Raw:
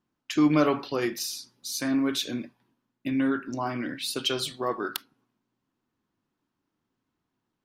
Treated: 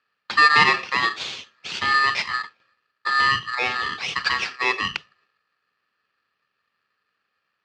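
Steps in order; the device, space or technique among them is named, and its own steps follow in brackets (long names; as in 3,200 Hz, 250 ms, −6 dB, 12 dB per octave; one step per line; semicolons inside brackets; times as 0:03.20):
ring modulator pedal into a guitar cabinet (ring modulator with a square carrier 1,500 Hz; loudspeaker in its box 100–4,600 Hz, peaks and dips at 280 Hz −4 dB, 650 Hz −4 dB, 2,600 Hz +4 dB)
level +6 dB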